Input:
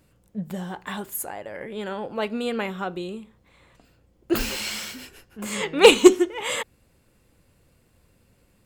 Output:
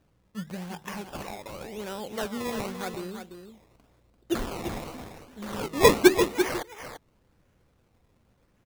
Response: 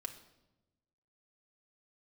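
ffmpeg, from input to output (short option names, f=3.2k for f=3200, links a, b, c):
-filter_complex "[0:a]acrossover=split=3400[a][b];[b]asoftclip=type=hard:threshold=-27dB[c];[a][c]amix=inputs=2:normalize=0,acrusher=samples=20:mix=1:aa=0.000001:lfo=1:lforange=20:lforate=0.9,aecho=1:1:342:0.376,volume=-5dB"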